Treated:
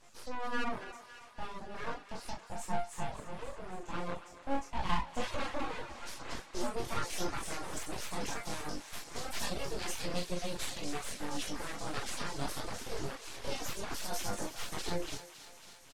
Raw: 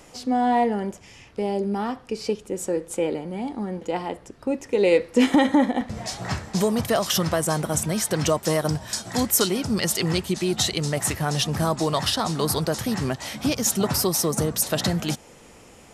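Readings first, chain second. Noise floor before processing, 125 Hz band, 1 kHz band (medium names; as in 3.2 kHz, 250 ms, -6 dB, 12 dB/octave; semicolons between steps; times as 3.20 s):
-49 dBFS, -18.0 dB, -12.0 dB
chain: doubling 40 ms -5.5 dB; in parallel at -0.5 dB: peak limiter -16.5 dBFS, peak gain reduction 11.5 dB; on the sum: chorus 0.35 Hz, delay 20 ms, depth 2 ms; chord resonator A#2 minor, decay 0.33 s; full-wave rectifier; reverb removal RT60 0.51 s; low-pass 10 kHz 12 dB/octave; thinning echo 277 ms, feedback 76%, high-pass 730 Hz, level -12 dB; trim +2 dB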